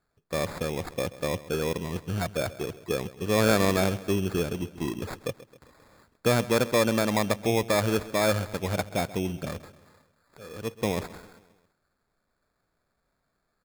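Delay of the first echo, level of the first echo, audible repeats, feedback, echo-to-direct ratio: 133 ms, -17.5 dB, 4, 53%, -16.0 dB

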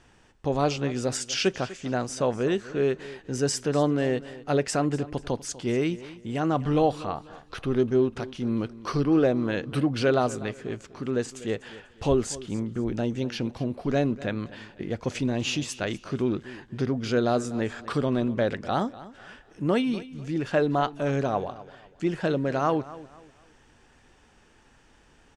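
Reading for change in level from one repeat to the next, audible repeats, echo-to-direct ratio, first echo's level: -10.0 dB, 2, -17.0 dB, -17.5 dB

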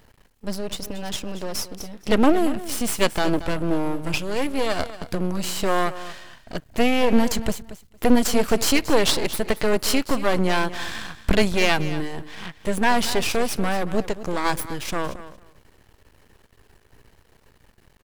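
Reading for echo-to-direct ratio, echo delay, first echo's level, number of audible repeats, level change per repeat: -14.5 dB, 229 ms, -14.5 dB, 2, -15.5 dB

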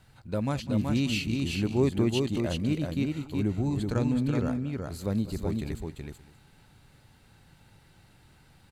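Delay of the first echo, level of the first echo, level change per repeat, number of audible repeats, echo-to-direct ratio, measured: 200 ms, -17.0 dB, no regular repeats, 3, -3.5 dB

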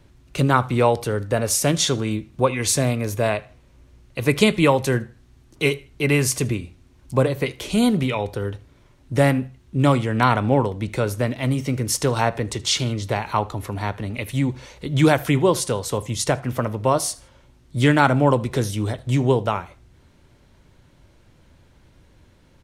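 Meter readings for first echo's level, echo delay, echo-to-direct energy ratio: -23.5 dB, 78 ms, -23.0 dB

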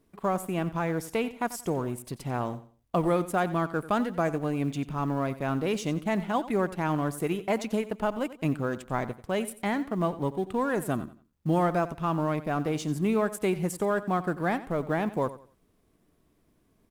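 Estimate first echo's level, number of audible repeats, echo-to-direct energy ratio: -15.5 dB, 2, -15.0 dB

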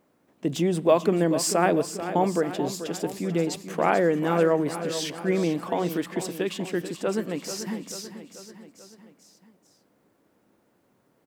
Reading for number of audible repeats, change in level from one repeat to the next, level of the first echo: 4, -5.0 dB, -11.0 dB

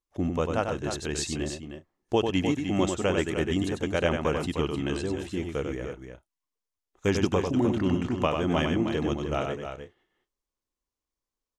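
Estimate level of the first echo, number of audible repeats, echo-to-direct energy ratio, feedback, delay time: -5.5 dB, 3, -3.5 dB, no regular repeats, 96 ms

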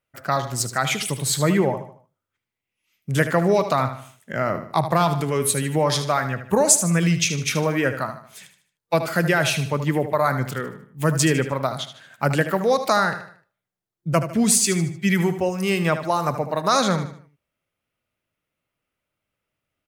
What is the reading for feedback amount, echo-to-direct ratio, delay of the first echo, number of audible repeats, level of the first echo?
40%, -10.0 dB, 76 ms, 4, -11.0 dB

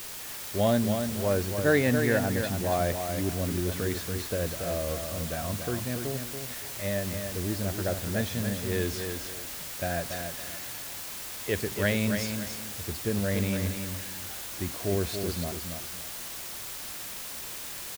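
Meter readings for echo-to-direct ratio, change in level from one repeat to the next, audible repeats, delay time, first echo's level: -6.0 dB, -11.0 dB, 2, 283 ms, -6.5 dB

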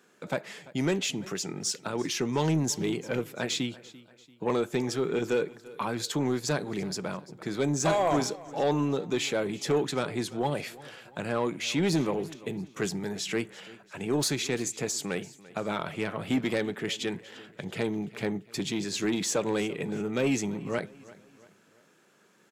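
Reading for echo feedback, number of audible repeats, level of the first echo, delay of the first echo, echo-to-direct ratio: 44%, 3, -20.0 dB, 341 ms, -19.0 dB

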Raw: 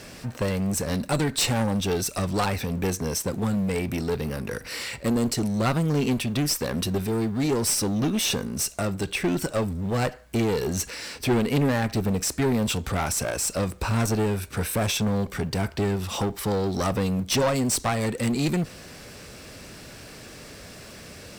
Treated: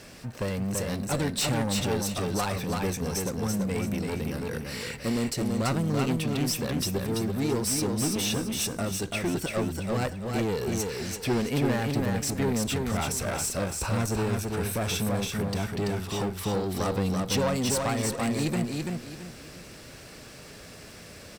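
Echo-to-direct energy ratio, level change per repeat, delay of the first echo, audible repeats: -3.0 dB, -10.0 dB, 335 ms, 3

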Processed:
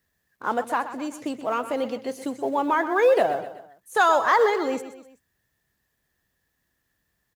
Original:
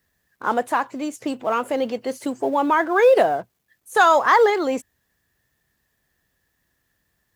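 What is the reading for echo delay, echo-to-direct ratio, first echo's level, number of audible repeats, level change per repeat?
126 ms, -11.5 dB, -12.5 dB, 3, -6.5 dB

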